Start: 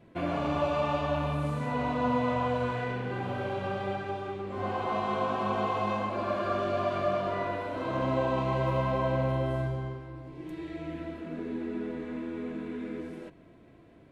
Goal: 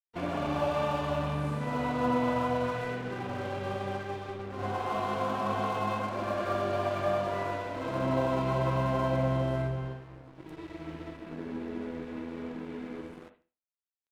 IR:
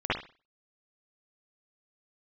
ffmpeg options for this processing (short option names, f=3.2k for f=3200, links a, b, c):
-filter_complex "[0:a]aeval=exprs='sgn(val(0))*max(abs(val(0))-0.00596,0)':c=same,asplit=2[a][b];[b]asetrate=58866,aresample=44100,atempo=0.749154,volume=-15dB[c];[a][c]amix=inputs=2:normalize=0,asplit=2[d][e];[1:a]atrim=start_sample=2205[f];[e][f]afir=irnorm=-1:irlink=0,volume=-18.5dB[g];[d][g]amix=inputs=2:normalize=0,volume=-1.5dB"